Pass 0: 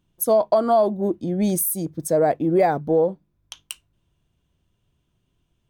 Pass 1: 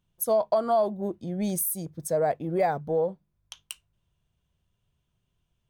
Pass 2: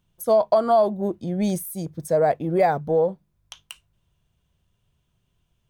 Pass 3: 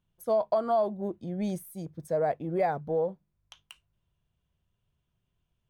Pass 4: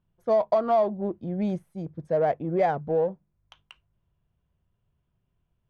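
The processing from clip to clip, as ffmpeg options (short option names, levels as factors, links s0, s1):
-af "equalizer=f=300:t=o:w=0.64:g=-9,volume=0.562"
-filter_complex "[0:a]acrossover=split=2900[s0][s1];[s1]acompressor=threshold=0.0126:ratio=4:attack=1:release=60[s2];[s0][s2]amix=inputs=2:normalize=0,volume=1.88"
-af "bass=f=250:g=0,treble=f=4000:g=-6,volume=0.398"
-af "adynamicsmooth=sensitivity=4:basefreq=2400,volume=1.58"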